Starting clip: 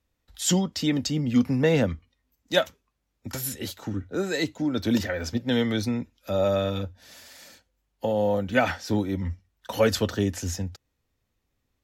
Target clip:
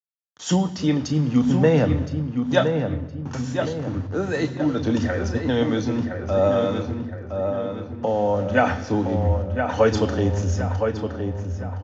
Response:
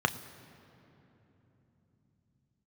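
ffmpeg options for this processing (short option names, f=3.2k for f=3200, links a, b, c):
-filter_complex "[0:a]equalizer=f=81:w=4.8:g=13.5,aeval=exprs='val(0)*gte(abs(val(0)),0.0133)':c=same,asplit=2[a][b];[b]adelay=1016,lowpass=f=2.2k:p=1,volume=-5.5dB,asplit=2[c][d];[d]adelay=1016,lowpass=f=2.2k:p=1,volume=0.48,asplit=2[e][f];[f]adelay=1016,lowpass=f=2.2k:p=1,volume=0.48,asplit=2[g][h];[h]adelay=1016,lowpass=f=2.2k:p=1,volume=0.48,asplit=2[i][j];[j]adelay=1016,lowpass=f=2.2k:p=1,volume=0.48,asplit=2[k][l];[l]adelay=1016,lowpass=f=2.2k:p=1,volume=0.48[m];[a][c][e][g][i][k][m]amix=inputs=7:normalize=0,asplit=2[n][o];[1:a]atrim=start_sample=2205,afade=t=out:st=0.43:d=0.01,atrim=end_sample=19404[p];[o][p]afir=irnorm=-1:irlink=0,volume=-2.5dB[q];[n][q]amix=inputs=2:normalize=0,aresample=16000,aresample=44100,volume=-6dB"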